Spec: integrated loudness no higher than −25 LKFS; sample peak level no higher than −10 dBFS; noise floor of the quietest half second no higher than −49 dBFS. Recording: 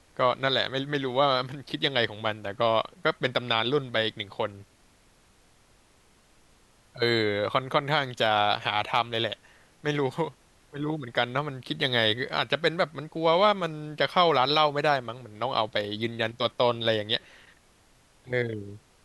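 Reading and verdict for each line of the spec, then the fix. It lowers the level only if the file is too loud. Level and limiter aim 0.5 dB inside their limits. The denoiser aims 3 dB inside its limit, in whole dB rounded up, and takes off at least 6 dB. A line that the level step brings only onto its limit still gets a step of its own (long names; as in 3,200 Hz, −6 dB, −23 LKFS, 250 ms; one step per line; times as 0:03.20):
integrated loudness −26.5 LKFS: in spec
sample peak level −7.5 dBFS: out of spec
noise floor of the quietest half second −61 dBFS: in spec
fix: brickwall limiter −10.5 dBFS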